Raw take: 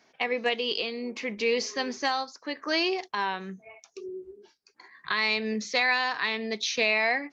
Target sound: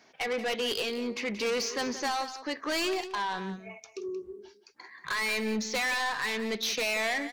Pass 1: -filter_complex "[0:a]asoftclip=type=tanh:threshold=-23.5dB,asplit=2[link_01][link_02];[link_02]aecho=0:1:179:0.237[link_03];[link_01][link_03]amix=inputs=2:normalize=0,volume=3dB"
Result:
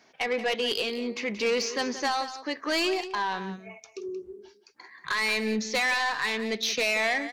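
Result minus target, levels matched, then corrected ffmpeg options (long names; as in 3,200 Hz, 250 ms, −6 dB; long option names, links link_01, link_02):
soft clipping: distortion −4 dB
-filter_complex "[0:a]asoftclip=type=tanh:threshold=-29.5dB,asplit=2[link_01][link_02];[link_02]aecho=0:1:179:0.237[link_03];[link_01][link_03]amix=inputs=2:normalize=0,volume=3dB"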